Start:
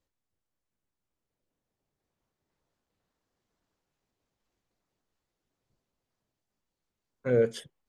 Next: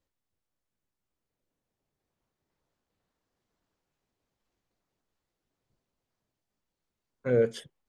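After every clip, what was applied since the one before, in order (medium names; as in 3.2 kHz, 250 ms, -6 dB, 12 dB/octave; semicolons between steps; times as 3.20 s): treble shelf 7.7 kHz -4 dB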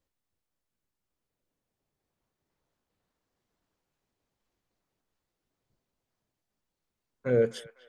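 feedback echo behind a band-pass 250 ms, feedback 43%, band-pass 1.6 kHz, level -15 dB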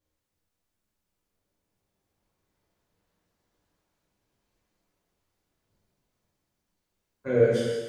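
gated-style reverb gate 480 ms falling, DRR -7.5 dB; trim -3 dB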